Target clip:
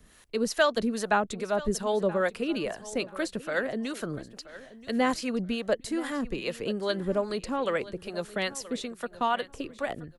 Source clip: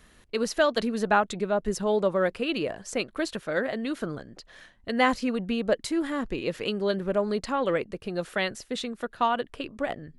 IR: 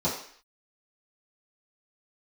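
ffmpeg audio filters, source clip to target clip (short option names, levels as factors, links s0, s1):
-filter_complex "[0:a]acrossover=split=550[s0][s1];[s0]aeval=exprs='val(0)*(1-0.7/2+0.7/2*cos(2*PI*2.4*n/s))':c=same[s2];[s1]aeval=exprs='val(0)*(1-0.7/2-0.7/2*cos(2*PI*2.4*n/s))':c=same[s3];[s2][s3]amix=inputs=2:normalize=0,aecho=1:1:978|1956:0.141|0.0311,acrossover=split=370|1300|5500[s4][s5][s6][s7];[s7]acontrast=57[s8];[s4][s5][s6][s8]amix=inputs=4:normalize=0,volume=1.19"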